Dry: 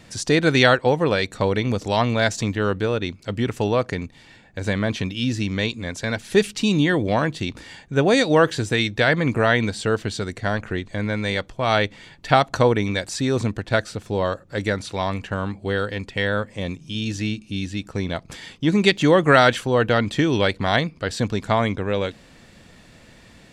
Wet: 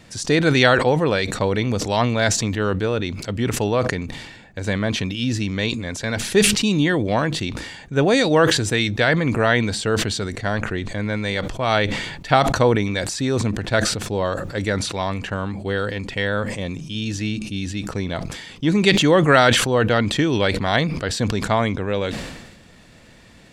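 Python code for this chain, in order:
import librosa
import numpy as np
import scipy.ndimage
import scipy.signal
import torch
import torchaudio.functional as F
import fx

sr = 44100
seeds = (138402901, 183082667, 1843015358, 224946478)

y = fx.sustainer(x, sr, db_per_s=47.0)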